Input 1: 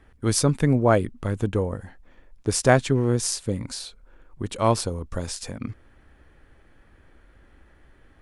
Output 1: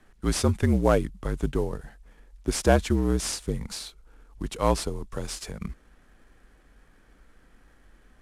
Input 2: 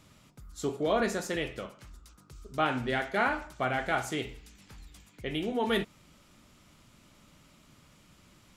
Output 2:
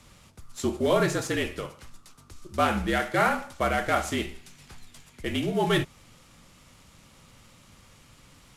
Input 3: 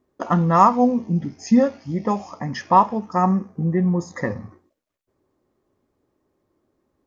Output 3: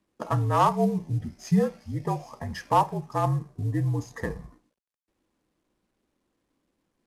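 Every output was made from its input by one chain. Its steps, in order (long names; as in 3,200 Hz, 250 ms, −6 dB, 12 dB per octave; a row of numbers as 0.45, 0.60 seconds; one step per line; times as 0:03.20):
variable-slope delta modulation 64 kbit/s
frequency shifter −53 Hz
loudness normalisation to −27 LKFS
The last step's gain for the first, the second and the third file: −2.0, +5.0, −6.5 decibels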